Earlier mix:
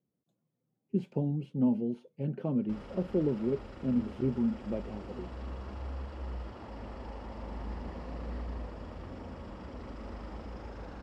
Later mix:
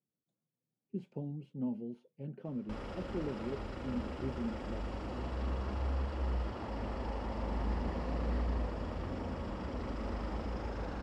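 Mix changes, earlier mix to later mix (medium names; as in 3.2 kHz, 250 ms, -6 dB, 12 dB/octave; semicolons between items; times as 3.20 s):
speech -9.5 dB; background +4.5 dB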